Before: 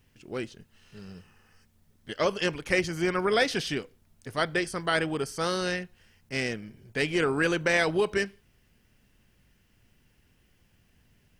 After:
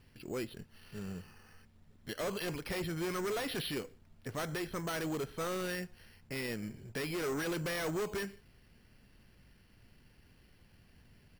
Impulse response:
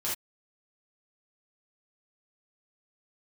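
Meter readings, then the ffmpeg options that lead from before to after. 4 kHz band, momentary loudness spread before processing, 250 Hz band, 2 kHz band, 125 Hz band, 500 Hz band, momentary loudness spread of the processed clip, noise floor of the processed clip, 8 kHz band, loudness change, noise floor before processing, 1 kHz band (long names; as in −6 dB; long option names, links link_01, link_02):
−9.5 dB, 15 LU, −7.0 dB, −12.5 dB, −5.5 dB, −9.5 dB, 12 LU, −64 dBFS, −5.0 dB, −10.0 dB, −66 dBFS, −10.0 dB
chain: -af "aresample=8000,asoftclip=type=hard:threshold=-28.5dB,aresample=44100,acrusher=samples=6:mix=1:aa=0.000001,alimiter=level_in=10dB:limit=-24dB:level=0:latency=1:release=92,volume=-10dB,volume=2.5dB"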